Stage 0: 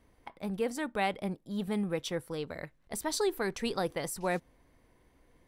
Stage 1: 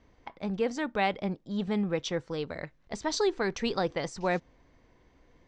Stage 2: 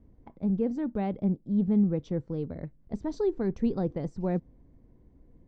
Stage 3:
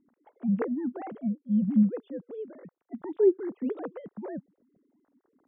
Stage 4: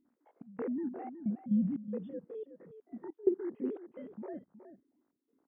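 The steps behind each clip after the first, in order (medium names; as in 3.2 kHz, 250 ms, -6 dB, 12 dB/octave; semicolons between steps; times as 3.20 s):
steep low-pass 6.9 kHz 48 dB/octave; trim +3 dB
FFT filter 230 Hz 0 dB, 1.2 kHz -20 dB, 3 kHz -27 dB; trim +6.5 dB
formants replaced by sine waves
spectrogram pixelated in time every 50 ms; trance gate "xxxxx..x" 179 bpm -24 dB; delay 368 ms -12 dB; trim -3 dB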